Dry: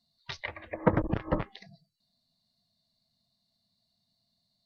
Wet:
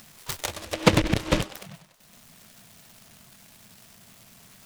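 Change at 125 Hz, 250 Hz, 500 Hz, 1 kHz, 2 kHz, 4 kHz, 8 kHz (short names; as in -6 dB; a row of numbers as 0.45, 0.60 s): +6.0 dB, +6.0 dB, +5.0 dB, +5.0 dB, +9.0 dB, +16.0 dB, n/a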